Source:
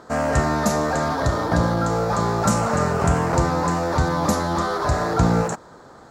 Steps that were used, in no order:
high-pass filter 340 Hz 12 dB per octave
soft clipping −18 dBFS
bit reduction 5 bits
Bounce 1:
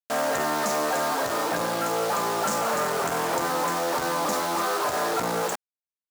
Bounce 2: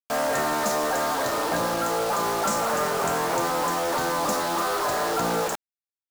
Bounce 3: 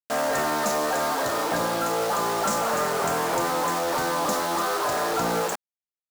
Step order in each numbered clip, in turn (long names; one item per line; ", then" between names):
bit reduction, then soft clipping, then high-pass filter
high-pass filter, then bit reduction, then soft clipping
bit reduction, then high-pass filter, then soft clipping